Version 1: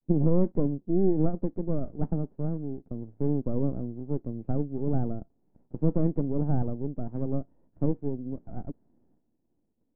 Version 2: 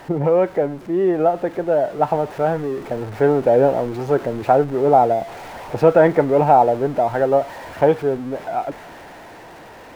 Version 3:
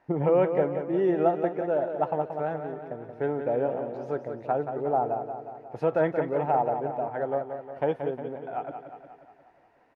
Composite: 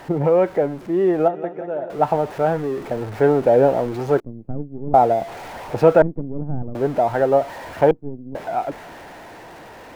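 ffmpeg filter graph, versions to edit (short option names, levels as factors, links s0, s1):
-filter_complex "[0:a]asplit=3[s0][s1][s2];[1:a]asplit=5[s3][s4][s5][s6][s7];[s3]atrim=end=1.282[s8];[2:a]atrim=start=1.278:end=1.902[s9];[s4]atrim=start=1.898:end=4.202[s10];[s0]atrim=start=4.198:end=4.942[s11];[s5]atrim=start=4.938:end=6.022[s12];[s1]atrim=start=6.018:end=6.752[s13];[s6]atrim=start=6.748:end=7.912[s14];[s2]atrim=start=7.908:end=8.352[s15];[s7]atrim=start=8.348[s16];[s8][s9]acrossfade=d=0.004:c1=hsin:c2=hsin[s17];[s17][s10]acrossfade=d=0.004:c1=hsin:c2=hsin[s18];[s18][s11]acrossfade=d=0.004:c1=hsin:c2=hsin[s19];[s19][s12]acrossfade=d=0.004:c1=hsin:c2=hsin[s20];[s20][s13]acrossfade=d=0.004:c1=hsin:c2=hsin[s21];[s21][s14]acrossfade=d=0.004:c1=hsin:c2=hsin[s22];[s22][s15]acrossfade=d=0.004:c1=hsin:c2=hsin[s23];[s23][s16]acrossfade=d=0.004:c1=hsin:c2=hsin"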